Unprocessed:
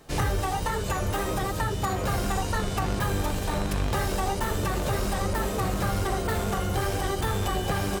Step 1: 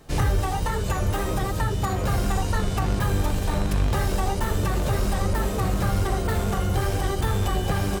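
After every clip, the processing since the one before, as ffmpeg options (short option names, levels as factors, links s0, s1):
-af "lowshelf=f=180:g=6.5"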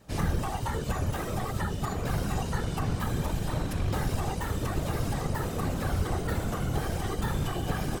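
-af "afftfilt=real='hypot(re,im)*cos(2*PI*random(0))':imag='hypot(re,im)*sin(2*PI*random(1))':win_size=512:overlap=0.75"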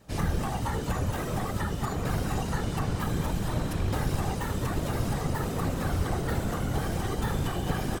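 -filter_complex "[0:a]asplit=9[s0][s1][s2][s3][s4][s5][s6][s7][s8];[s1]adelay=214,afreqshift=48,volume=0.316[s9];[s2]adelay=428,afreqshift=96,volume=0.2[s10];[s3]adelay=642,afreqshift=144,volume=0.126[s11];[s4]adelay=856,afreqshift=192,volume=0.0794[s12];[s5]adelay=1070,afreqshift=240,volume=0.0495[s13];[s6]adelay=1284,afreqshift=288,volume=0.0313[s14];[s7]adelay=1498,afreqshift=336,volume=0.0197[s15];[s8]adelay=1712,afreqshift=384,volume=0.0124[s16];[s0][s9][s10][s11][s12][s13][s14][s15][s16]amix=inputs=9:normalize=0"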